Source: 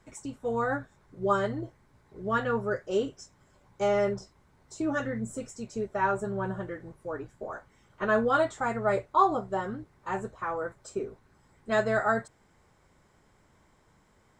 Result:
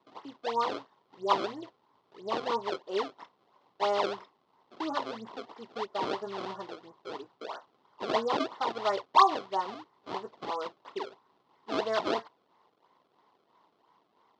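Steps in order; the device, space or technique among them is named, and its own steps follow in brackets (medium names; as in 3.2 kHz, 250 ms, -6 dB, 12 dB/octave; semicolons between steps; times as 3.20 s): circuit-bent sampling toy (decimation with a swept rate 27×, swing 160% 3 Hz; cabinet simulation 420–4400 Hz, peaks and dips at 560 Hz -5 dB, 1 kHz +9 dB, 1.6 kHz -9 dB, 2.4 kHz -8 dB)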